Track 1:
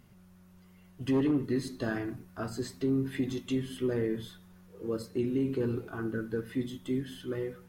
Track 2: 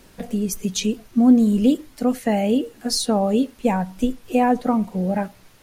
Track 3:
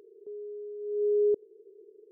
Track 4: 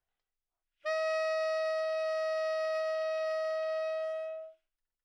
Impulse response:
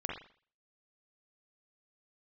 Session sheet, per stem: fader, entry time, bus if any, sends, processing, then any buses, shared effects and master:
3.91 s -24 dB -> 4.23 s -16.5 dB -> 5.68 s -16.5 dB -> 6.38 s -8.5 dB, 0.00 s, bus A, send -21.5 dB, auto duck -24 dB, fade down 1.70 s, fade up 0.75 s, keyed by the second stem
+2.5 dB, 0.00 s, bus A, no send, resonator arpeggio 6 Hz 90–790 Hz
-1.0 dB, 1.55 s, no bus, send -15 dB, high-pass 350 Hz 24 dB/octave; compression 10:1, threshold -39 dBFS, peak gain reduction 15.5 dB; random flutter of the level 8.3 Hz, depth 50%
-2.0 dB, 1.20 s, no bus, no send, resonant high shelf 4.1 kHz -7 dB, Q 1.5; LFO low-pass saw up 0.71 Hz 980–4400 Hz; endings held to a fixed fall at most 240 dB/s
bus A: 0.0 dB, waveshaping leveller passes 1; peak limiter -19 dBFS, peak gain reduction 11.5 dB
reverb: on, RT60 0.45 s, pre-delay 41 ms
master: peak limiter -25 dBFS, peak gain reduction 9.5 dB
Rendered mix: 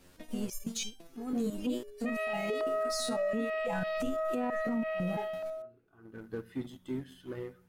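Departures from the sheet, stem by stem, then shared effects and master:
stem 3 -1.0 dB -> -7.0 dB; reverb return -7.0 dB

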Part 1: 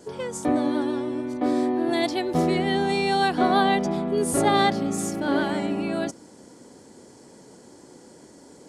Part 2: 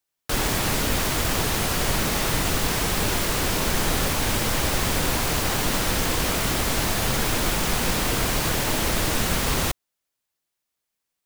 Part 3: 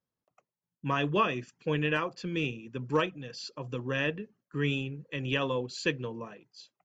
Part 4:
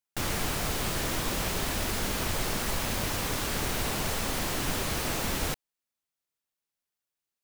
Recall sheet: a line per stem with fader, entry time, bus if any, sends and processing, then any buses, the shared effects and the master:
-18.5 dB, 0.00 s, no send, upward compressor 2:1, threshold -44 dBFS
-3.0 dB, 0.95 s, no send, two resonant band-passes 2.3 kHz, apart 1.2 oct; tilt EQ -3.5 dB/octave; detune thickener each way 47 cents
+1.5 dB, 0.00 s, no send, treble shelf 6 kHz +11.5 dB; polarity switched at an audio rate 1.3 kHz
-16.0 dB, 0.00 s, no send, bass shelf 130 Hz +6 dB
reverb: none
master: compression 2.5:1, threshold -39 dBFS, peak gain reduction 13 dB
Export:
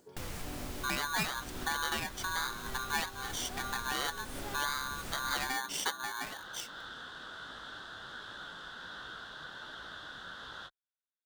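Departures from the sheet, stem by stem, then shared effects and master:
stem 3 +1.5 dB -> +9.0 dB; stem 4 -16.0 dB -> -8.0 dB

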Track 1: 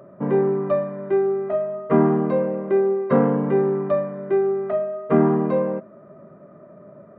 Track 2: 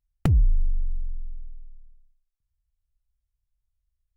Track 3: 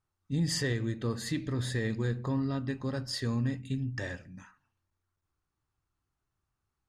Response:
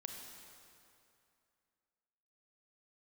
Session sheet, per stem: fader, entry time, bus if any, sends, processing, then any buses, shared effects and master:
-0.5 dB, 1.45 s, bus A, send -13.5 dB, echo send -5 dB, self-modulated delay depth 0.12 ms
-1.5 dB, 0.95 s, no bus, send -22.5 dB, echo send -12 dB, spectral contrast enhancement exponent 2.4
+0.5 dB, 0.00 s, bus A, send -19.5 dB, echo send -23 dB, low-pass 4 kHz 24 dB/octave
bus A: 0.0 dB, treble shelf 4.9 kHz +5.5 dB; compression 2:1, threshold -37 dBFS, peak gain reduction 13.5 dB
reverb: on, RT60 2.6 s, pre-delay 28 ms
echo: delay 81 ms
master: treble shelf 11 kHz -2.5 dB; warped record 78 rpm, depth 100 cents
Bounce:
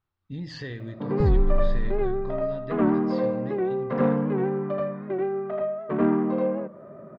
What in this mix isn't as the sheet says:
stem 1: entry 1.45 s -> 0.80 s; reverb return -8.0 dB

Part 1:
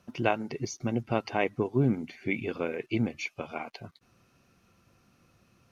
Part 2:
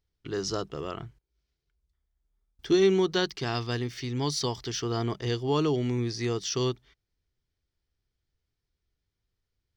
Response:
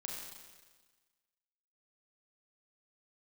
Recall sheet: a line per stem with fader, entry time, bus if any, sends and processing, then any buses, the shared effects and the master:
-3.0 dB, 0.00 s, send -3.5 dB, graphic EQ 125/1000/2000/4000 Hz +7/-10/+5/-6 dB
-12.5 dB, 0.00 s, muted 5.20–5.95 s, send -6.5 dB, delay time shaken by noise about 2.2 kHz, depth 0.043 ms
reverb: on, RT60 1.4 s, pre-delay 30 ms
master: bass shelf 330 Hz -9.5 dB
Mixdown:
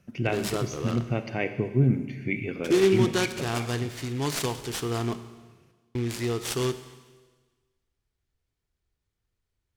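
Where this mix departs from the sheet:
stem 2 -12.5 dB -> -1.5 dB; master: missing bass shelf 330 Hz -9.5 dB

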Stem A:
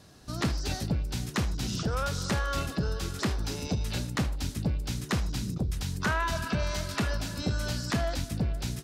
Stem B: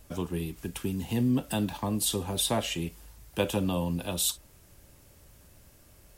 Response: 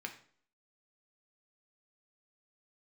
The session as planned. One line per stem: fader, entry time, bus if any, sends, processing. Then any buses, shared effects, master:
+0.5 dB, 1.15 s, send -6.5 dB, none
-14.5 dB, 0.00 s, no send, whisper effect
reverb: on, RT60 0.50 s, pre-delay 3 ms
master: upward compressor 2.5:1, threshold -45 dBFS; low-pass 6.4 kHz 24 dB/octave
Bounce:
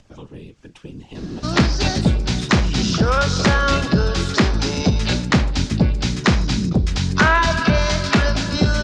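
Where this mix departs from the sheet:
stem A +0.5 dB -> +11.5 dB; stem B -14.5 dB -> -4.5 dB

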